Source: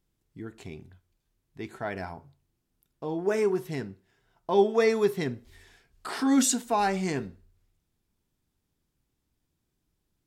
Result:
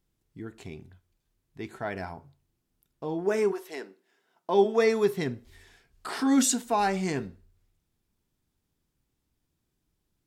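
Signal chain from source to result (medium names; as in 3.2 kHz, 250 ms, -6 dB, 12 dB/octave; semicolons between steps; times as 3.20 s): 3.51–4.64 s: high-pass 460 Hz -> 160 Hz 24 dB/octave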